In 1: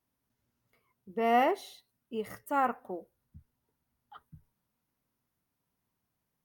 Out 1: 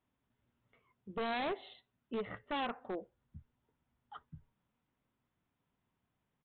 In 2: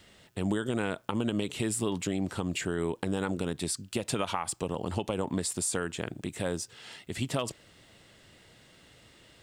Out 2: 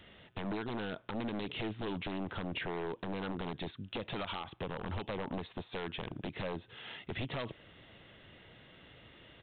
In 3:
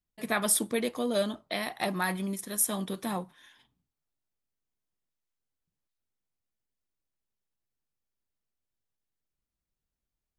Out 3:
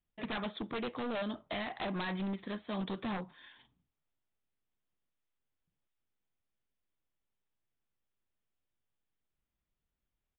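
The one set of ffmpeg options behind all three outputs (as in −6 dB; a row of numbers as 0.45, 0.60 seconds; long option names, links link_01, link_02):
-af "acompressor=threshold=-33dB:ratio=2.5,aresample=8000,aeval=exprs='0.0251*(abs(mod(val(0)/0.0251+3,4)-2)-1)':channel_layout=same,aresample=44100,volume=1dB"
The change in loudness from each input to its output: −9.0, −7.5, −8.5 LU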